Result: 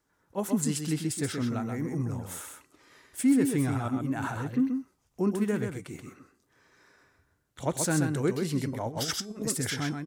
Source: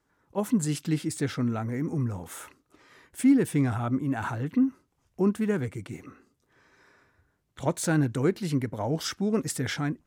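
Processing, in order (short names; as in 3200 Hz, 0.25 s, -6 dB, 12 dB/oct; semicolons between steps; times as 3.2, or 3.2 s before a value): on a send: echo 0.13 s -5.5 dB; 8.88–9.47 on the sum: negative-ratio compressor -31 dBFS, ratio -0.5; tone controls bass -1 dB, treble +5 dB; de-hum 387.4 Hz, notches 30; gain -2.5 dB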